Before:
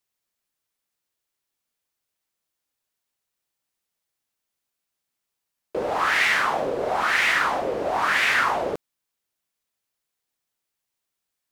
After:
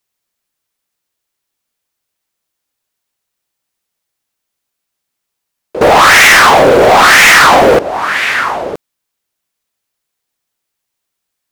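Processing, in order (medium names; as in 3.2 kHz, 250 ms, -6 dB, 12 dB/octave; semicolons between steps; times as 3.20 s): 5.81–7.79 s: waveshaping leveller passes 5; trim +7.5 dB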